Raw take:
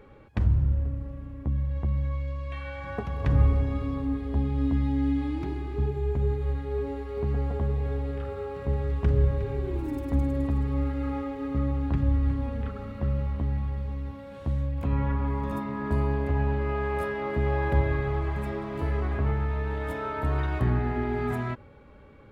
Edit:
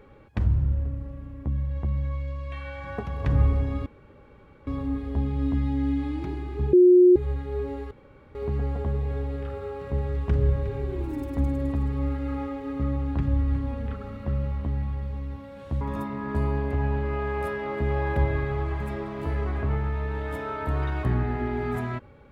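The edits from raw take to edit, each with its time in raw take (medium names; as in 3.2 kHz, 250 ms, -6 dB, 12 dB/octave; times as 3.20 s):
3.86 s: insert room tone 0.81 s
5.92–6.35 s: bleep 360 Hz -11 dBFS
7.10 s: insert room tone 0.44 s
14.56–15.37 s: delete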